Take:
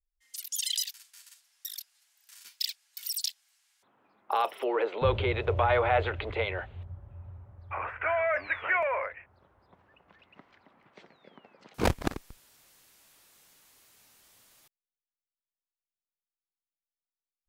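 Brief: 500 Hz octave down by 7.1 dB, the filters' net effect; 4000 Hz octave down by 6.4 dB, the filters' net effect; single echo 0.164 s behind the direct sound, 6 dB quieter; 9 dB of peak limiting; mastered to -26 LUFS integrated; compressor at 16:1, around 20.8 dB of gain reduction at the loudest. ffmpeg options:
-af "equalizer=f=500:t=o:g=-9,equalizer=f=4k:t=o:g=-8.5,acompressor=threshold=-44dB:ratio=16,alimiter=level_in=14.5dB:limit=-24dB:level=0:latency=1,volume=-14.5dB,aecho=1:1:164:0.501,volume=25dB"

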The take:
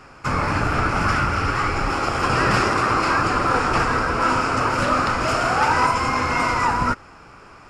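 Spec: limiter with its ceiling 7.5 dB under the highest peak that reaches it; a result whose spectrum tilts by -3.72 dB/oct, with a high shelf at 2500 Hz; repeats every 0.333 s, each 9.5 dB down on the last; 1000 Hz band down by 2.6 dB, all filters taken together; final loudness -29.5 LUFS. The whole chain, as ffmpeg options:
-af "equalizer=f=1k:t=o:g=-5,highshelf=f=2.5k:g=7,alimiter=limit=-14dB:level=0:latency=1,aecho=1:1:333|666|999|1332:0.335|0.111|0.0365|0.012,volume=-7dB"

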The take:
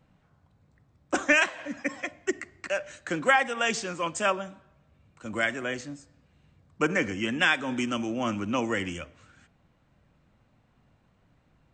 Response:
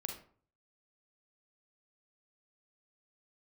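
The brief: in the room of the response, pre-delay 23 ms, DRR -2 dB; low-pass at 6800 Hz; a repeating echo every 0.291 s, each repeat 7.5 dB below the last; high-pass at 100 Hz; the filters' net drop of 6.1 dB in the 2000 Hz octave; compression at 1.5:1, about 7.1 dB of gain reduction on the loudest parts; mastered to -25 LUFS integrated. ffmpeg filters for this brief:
-filter_complex "[0:a]highpass=100,lowpass=6.8k,equalizer=f=2k:t=o:g=-8,acompressor=threshold=-40dB:ratio=1.5,aecho=1:1:291|582|873|1164|1455:0.422|0.177|0.0744|0.0312|0.0131,asplit=2[a][b];[1:a]atrim=start_sample=2205,adelay=23[c];[b][c]afir=irnorm=-1:irlink=0,volume=3dB[d];[a][d]amix=inputs=2:normalize=0,volume=7dB"

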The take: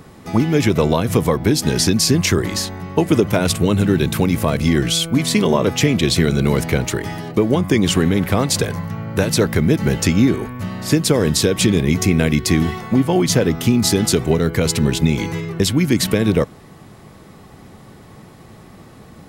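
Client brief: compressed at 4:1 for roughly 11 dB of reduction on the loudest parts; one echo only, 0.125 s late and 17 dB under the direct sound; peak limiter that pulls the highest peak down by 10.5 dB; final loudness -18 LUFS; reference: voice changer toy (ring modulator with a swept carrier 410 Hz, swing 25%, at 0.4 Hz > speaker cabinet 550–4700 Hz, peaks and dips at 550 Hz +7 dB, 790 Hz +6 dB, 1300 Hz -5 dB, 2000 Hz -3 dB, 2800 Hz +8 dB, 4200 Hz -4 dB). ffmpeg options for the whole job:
-af "acompressor=threshold=-24dB:ratio=4,alimiter=limit=-21dB:level=0:latency=1,aecho=1:1:125:0.141,aeval=exprs='val(0)*sin(2*PI*410*n/s+410*0.25/0.4*sin(2*PI*0.4*n/s))':c=same,highpass=550,equalizer=f=550:t=q:w=4:g=7,equalizer=f=790:t=q:w=4:g=6,equalizer=f=1.3k:t=q:w=4:g=-5,equalizer=f=2k:t=q:w=4:g=-3,equalizer=f=2.8k:t=q:w=4:g=8,equalizer=f=4.2k:t=q:w=4:g=-4,lowpass=f=4.7k:w=0.5412,lowpass=f=4.7k:w=1.3066,volume=15.5dB"

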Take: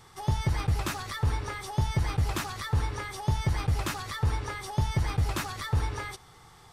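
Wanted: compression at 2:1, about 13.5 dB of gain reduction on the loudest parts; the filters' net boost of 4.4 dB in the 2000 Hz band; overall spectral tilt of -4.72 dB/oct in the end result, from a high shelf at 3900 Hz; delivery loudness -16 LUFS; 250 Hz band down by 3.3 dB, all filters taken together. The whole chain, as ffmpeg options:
-af "equalizer=f=250:t=o:g=-6.5,equalizer=f=2k:t=o:g=6.5,highshelf=f=3.9k:g=-5.5,acompressor=threshold=-48dB:ratio=2,volume=26.5dB"

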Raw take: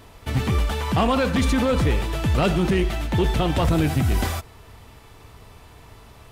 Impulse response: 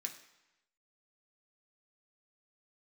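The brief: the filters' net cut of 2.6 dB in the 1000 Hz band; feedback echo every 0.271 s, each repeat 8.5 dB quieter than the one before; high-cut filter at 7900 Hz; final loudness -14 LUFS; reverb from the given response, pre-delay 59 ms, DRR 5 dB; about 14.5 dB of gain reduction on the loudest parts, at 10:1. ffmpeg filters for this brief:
-filter_complex "[0:a]lowpass=7.9k,equalizer=f=1k:t=o:g=-3.5,acompressor=threshold=-32dB:ratio=10,aecho=1:1:271|542|813|1084:0.376|0.143|0.0543|0.0206,asplit=2[a][b];[1:a]atrim=start_sample=2205,adelay=59[c];[b][c]afir=irnorm=-1:irlink=0,volume=-3dB[d];[a][d]amix=inputs=2:normalize=0,volume=21.5dB"

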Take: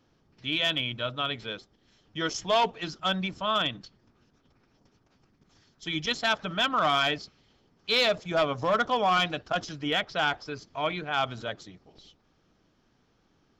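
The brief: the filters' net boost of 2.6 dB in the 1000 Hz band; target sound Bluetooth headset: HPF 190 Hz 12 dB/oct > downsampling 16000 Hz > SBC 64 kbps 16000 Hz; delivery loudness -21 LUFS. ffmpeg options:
-af "highpass=190,equalizer=f=1k:t=o:g=3.5,aresample=16000,aresample=44100,volume=5.5dB" -ar 16000 -c:a sbc -b:a 64k

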